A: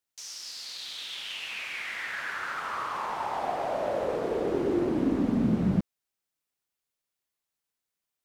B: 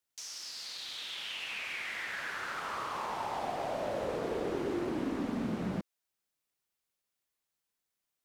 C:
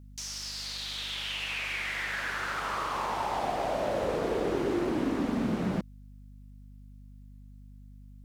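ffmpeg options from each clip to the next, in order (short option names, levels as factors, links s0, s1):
-filter_complex "[0:a]acrossover=split=300|820|2300[s0][s1][s2][s3];[s0]acompressor=threshold=0.0112:ratio=4[s4];[s1]acompressor=threshold=0.0126:ratio=4[s5];[s2]acompressor=threshold=0.00794:ratio=4[s6];[s3]acompressor=threshold=0.00891:ratio=4[s7];[s4][s5][s6][s7]amix=inputs=4:normalize=0"
-af "aeval=exprs='val(0)+0.00224*(sin(2*PI*50*n/s)+sin(2*PI*2*50*n/s)/2+sin(2*PI*3*50*n/s)/3+sin(2*PI*4*50*n/s)/4+sin(2*PI*5*50*n/s)/5)':c=same,volume=1.78"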